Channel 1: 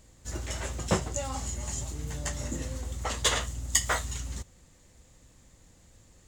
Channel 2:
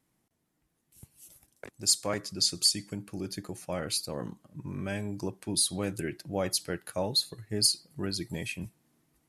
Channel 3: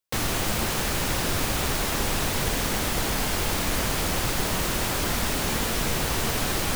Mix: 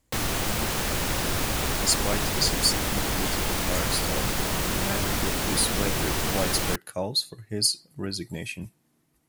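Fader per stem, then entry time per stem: -14.5, +1.5, -1.0 dB; 0.00, 0.00, 0.00 s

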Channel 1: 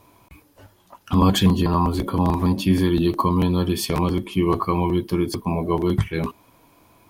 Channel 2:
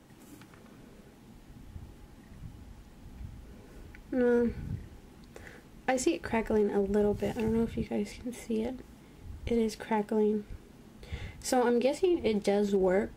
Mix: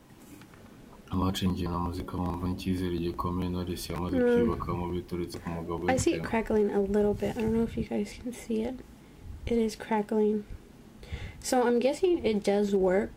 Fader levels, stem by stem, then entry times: -12.0, +1.5 dB; 0.00, 0.00 s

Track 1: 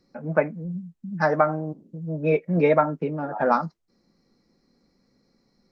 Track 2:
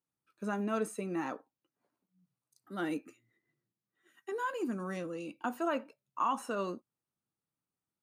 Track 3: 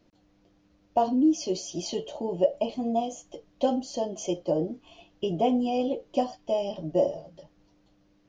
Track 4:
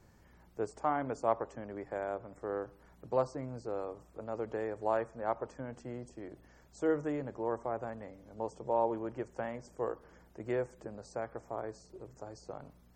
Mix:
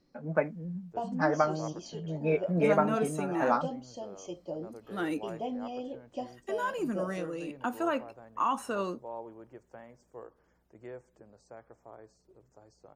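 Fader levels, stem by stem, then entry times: -6.5, +2.5, -12.0, -11.0 dB; 0.00, 2.20, 0.00, 0.35 s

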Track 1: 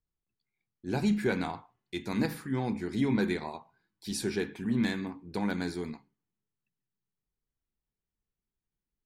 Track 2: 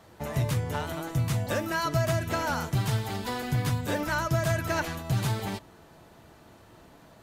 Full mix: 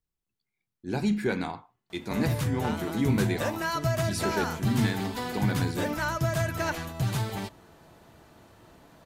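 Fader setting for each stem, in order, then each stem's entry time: +1.0, -1.0 dB; 0.00, 1.90 s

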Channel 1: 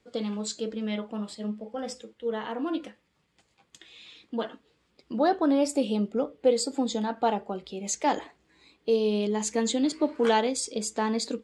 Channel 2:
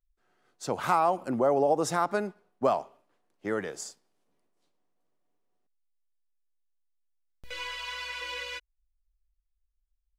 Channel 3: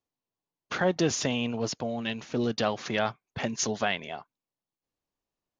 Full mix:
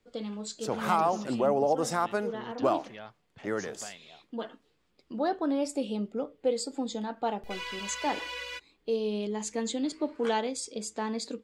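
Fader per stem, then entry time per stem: -5.5, -1.5, -17.5 dB; 0.00, 0.00, 0.00 s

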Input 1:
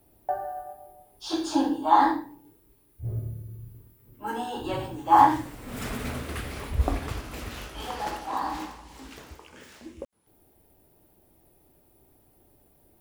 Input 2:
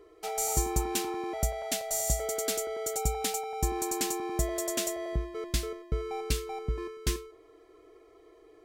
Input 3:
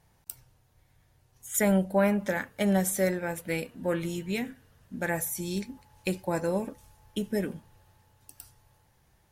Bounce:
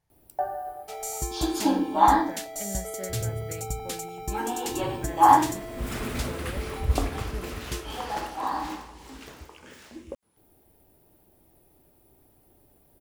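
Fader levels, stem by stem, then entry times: +0.5, -3.5, -13.0 dB; 0.10, 0.65, 0.00 s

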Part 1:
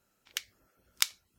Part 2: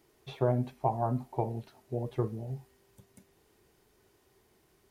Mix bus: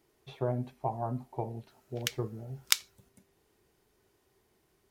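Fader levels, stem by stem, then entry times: +2.0, -4.0 dB; 1.70, 0.00 s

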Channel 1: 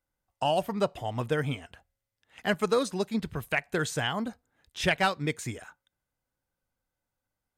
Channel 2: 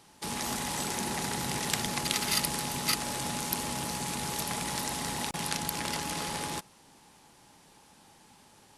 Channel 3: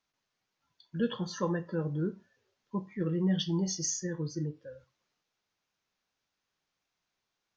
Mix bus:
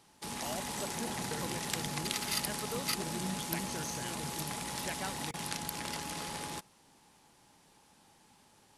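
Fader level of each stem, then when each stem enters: -16.0, -5.5, -12.0 dB; 0.00, 0.00, 0.00 s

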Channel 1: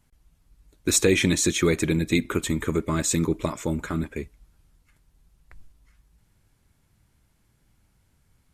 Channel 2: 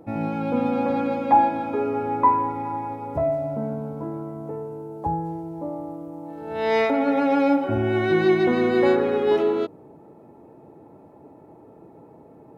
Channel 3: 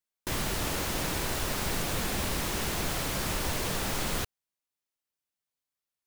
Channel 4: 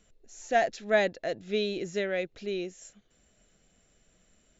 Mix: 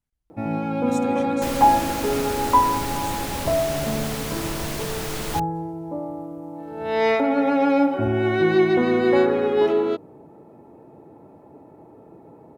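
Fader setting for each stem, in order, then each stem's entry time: -19.5 dB, +1.0 dB, +1.0 dB, off; 0.00 s, 0.30 s, 1.15 s, off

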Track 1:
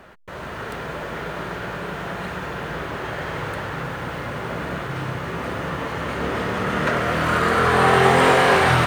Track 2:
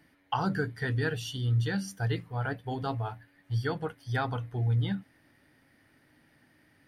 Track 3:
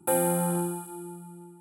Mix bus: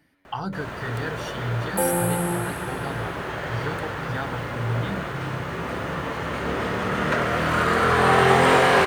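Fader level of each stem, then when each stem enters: -1.5, -1.0, +2.0 dB; 0.25, 0.00, 1.70 s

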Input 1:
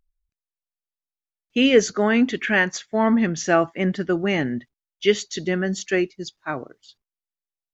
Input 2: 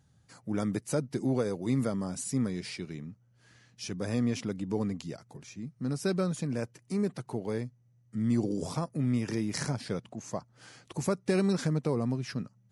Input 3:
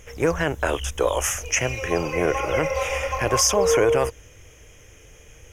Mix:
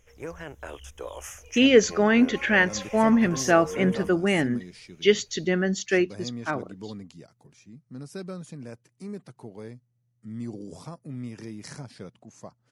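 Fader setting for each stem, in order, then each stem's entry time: -1.0, -7.5, -16.0 dB; 0.00, 2.10, 0.00 s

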